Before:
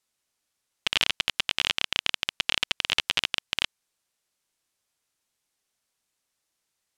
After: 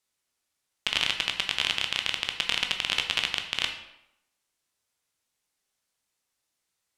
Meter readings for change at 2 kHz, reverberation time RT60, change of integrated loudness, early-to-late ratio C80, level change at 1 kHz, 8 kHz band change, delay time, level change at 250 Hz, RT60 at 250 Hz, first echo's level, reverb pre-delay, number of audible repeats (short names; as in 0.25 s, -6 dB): -0.5 dB, 0.85 s, -0.5 dB, 10.5 dB, -0.5 dB, -1.0 dB, none, -0.5 dB, 0.80 s, none, 12 ms, none